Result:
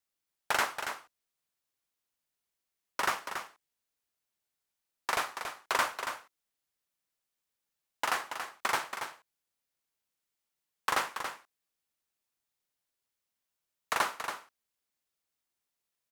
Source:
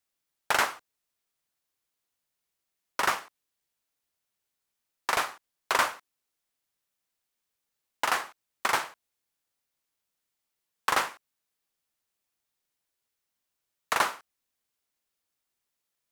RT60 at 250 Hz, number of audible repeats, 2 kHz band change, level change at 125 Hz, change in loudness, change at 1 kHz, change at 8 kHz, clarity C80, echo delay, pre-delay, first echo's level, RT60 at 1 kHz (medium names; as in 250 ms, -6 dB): no reverb, 1, -3.5 dB, -3.5 dB, -4.5 dB, -3.5 dB, -3.5 dB, no reverb, 280 ms, no reverb, -8.0 dB, no reverb